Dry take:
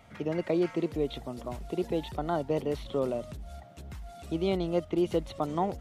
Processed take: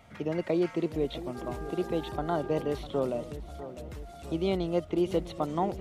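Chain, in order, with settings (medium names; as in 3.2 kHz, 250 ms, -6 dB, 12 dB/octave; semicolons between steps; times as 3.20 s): filtered feedback delay 651 ms, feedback 56%, low-pass 2.6 kHz, level -13.5 dB; 1.34–2.77 s: mains buzz 400 Hz, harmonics 4, -43 dBFS -5 dB/octave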